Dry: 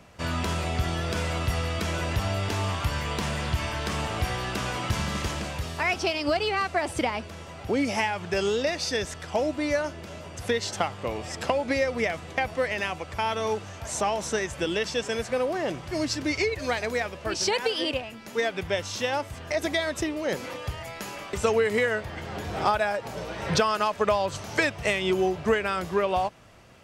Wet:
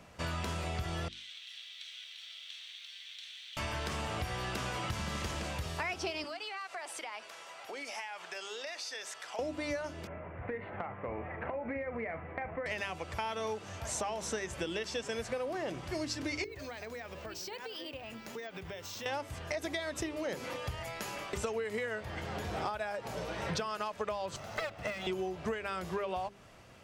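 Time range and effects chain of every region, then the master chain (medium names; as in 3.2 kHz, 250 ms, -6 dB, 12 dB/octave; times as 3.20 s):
1.08–3.57 s: comb filter that takes the minimum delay 0.5 ms + ladder band-pass 3.4 kHz, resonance 75% + bit-crushed delay 122 ms, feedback 80%, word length 10-bit, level -14.5 dB
6.24–9.39 s: high-pass 780 Hz + compression 4:1, threshold -36 dBFS
10.07–12.66 s: elliptic low-pass 2.2 kHz, stop band 60 dB + compression, threshold -29 dBFS + doubling 40 ms -11.5 dB
16.44–19.06 s: compression 10:1, threshold -36 dBFS + careless resampling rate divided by 2×, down filtered, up hold
24.36–25.07 s: comb filter that takes the minimum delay 1.5 ms + high-pass 130 Hz 6 dB/octave + peaking EQ 10 kHz -10 dB 2.4 oct
whole clip: hum notches 50/100/150/200/250/300/350/400 Hz; compression, threshold -30 dBFS; trim -3 dB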